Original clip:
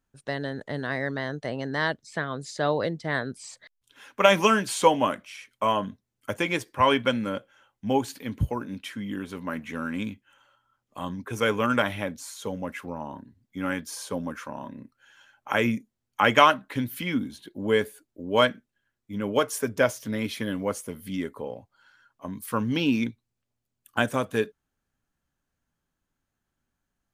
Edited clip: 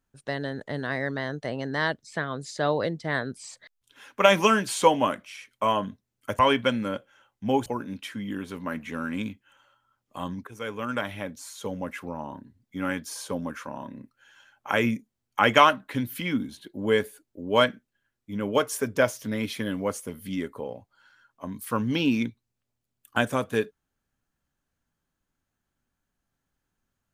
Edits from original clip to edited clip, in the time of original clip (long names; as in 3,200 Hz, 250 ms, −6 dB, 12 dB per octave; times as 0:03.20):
0:06.39–0:06.80: remove
0:08.07–0:08.47: remove
0:11.28–0:12.59: fade in, from −14 dB